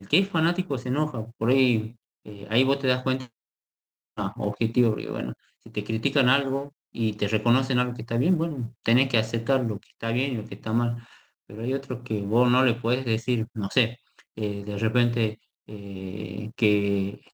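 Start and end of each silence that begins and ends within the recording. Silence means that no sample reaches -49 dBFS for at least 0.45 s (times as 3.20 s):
3.28–4.17 s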